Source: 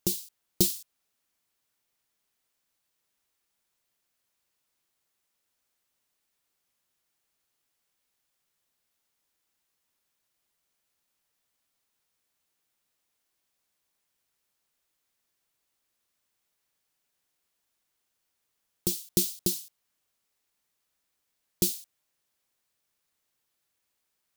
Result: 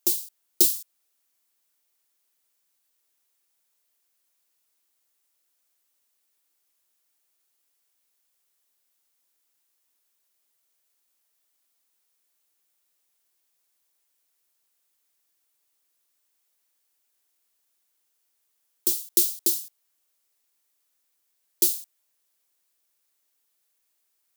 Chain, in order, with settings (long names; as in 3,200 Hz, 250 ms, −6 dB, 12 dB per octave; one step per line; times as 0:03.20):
Butterworth high-pass 240 Hz 48 dB per octave
high-shelf EQ 6,100 Hz +9 dB
level −1 dB